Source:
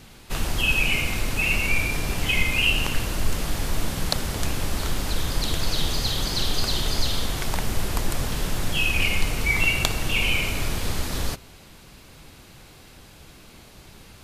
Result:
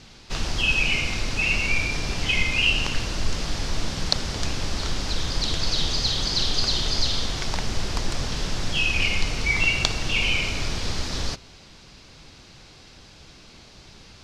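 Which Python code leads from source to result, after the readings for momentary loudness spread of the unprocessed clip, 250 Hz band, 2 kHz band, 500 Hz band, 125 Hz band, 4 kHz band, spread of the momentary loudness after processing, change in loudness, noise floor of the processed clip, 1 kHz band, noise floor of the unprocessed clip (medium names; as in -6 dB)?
8 LU, -1.5 dB, 0.0 dB, -1.5 dB, -1.5 dB, +2.5 dB, 9 LU, +0.5 dB, -48 dBFS, -1.5 dB, -48 dBFS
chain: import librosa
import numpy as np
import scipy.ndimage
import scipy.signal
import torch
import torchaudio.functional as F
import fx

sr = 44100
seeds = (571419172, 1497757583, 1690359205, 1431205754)

y = fx.lowpass_res(x, sr, hz=5400.0, q=2.1)
y = F.gain(torch.from_numpy(y), -1.5).numpy()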